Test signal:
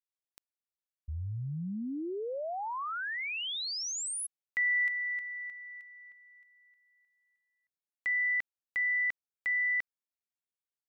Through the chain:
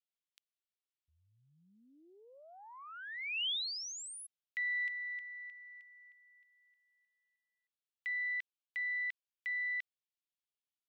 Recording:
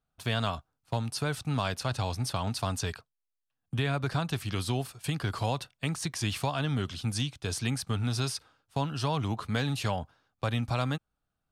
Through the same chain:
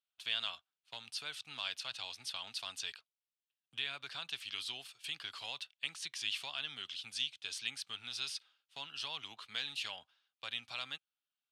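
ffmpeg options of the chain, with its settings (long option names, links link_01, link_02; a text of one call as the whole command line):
ffmpeg -i in.wav -af "aeval=exprs='0.15*(cos(1*acos(clip(val(0)/0.15,-1,1)))-cos(1*PI/2))+0.00376*(cos(2*acos(clip(val(0)/0.15,-1,1)))-cos(2*PI/2))+0.00335*(cos(4*acos(clip(val(0)/0.15,-1,1)))-cos(4*PI/2))':channel_layout=same,crystalizer=i=1:c=0,bandpass=frequency=3100:width_type=q:width=2.3:csg=0" out.wav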